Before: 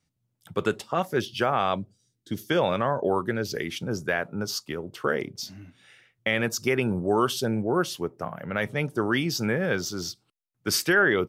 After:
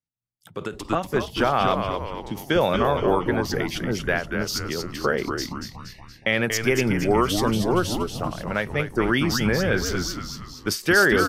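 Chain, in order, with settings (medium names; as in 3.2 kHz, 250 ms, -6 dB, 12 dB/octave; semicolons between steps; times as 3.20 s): spectral noise reduction 22 dB; frequency-shifting echo 235 ms, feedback 50%, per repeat -110 Hz, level -6 dB; endings held to a fixed fall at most 170 dB/s; trim +3 dB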